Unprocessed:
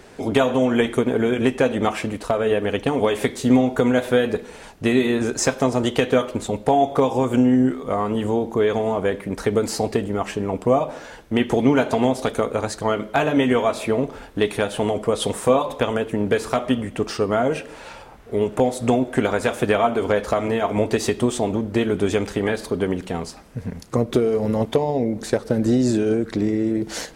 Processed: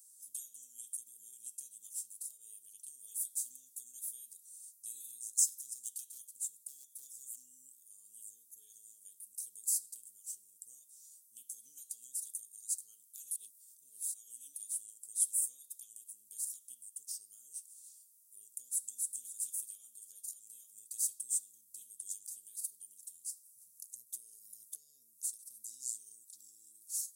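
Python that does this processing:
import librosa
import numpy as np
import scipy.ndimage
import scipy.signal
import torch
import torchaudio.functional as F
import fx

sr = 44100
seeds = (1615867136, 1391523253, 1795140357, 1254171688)

y = fx.clip_hard(x, sr, threshold_db=-11.5, at=(5.06, 7.44))
y = fx.echo_throw(y, sr, start_s=18.69, length_s=0.54, ms=270, feedback_pct=25, wet_db=-1.5)
y = fx.edit(y, sr, fx.reverse_span(start_s=13.31, length_s=1.25), tone=tone)
y = scipy.signal.sosfilt(scipy.signal.cheby2(4, 70, 2200.0, 'highpass', fs=sr, output='sos'), y)
y = y * librosa.db_to_amplitude(5.5)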